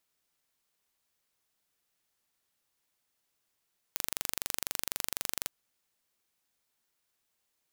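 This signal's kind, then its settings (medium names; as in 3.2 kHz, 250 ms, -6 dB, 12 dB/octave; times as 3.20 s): pulse train 24 per s, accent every 0, -4.5 dBFS 1.53 s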